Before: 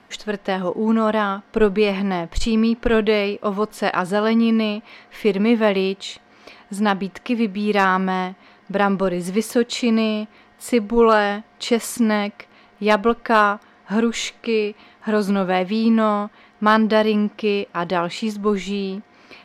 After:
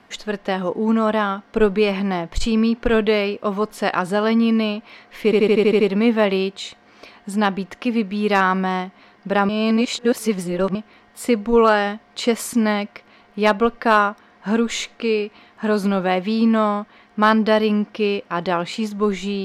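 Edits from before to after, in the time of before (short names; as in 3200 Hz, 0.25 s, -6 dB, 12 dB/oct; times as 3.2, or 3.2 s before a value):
5.24 stutter 0.08 s, 8 plays
8.93–10.19 reverse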